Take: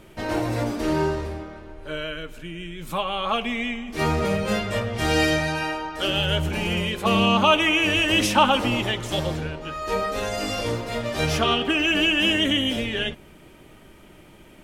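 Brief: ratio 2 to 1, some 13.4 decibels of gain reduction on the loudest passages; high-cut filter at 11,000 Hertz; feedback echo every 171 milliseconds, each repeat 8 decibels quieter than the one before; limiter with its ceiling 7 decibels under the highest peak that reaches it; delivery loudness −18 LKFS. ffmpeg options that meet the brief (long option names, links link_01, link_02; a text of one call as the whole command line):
ffmpeg -i in.wav -af "lowpass=11000,acompressor=threshold=-38dB:ratio=2,alimiter=level_in=1.5dB:limit=-24dB:level=0:latency=1,volume=-1.5dB,aecho=1:1:171|342|513|684|855:0.398|0.159|0.0637|0.0255|0.0102,volume=16.5dB" out.wav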